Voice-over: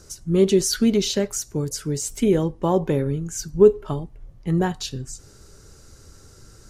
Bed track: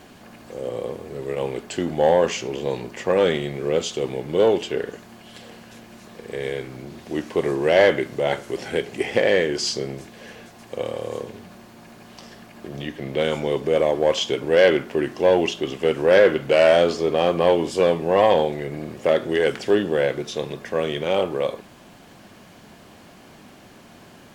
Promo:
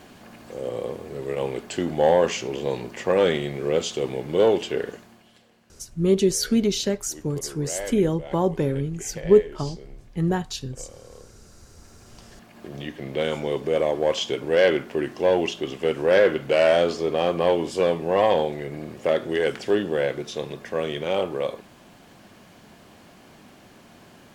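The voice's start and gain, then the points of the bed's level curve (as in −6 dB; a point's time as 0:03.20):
5.70 s, −2.0 dB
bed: 0:04.90 −1 dB
0:05.49 −17.5 dB
0:11.29 −17.5 dB
0:12.66 −3 dB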